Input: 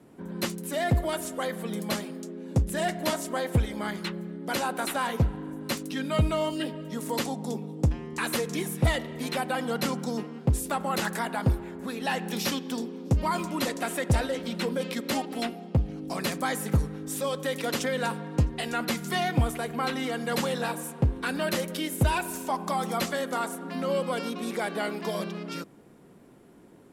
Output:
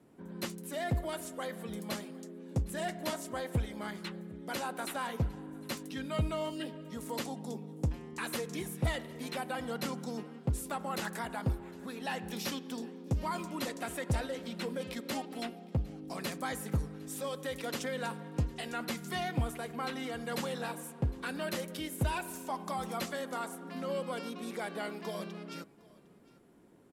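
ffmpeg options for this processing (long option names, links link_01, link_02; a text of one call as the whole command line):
ffmpeg -i in.wav -af "aecho=1:1:758:0.0668,volume=-8dB" out.wav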